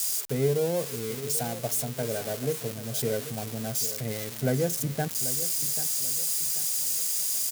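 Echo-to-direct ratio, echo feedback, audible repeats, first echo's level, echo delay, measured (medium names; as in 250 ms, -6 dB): -13.0 dB, 37%, 3, -13.5 dB, 787 ms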